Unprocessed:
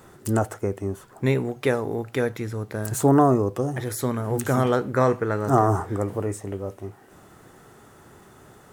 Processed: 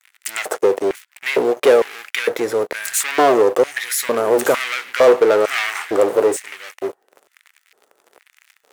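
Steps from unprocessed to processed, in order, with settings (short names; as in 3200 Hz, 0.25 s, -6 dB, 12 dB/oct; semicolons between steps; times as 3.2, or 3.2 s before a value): sample leveller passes 5; gate with hold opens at -45 dBFS; LFO high-pass square 1.1 Hz 480–2100 Hz; gain -6 dB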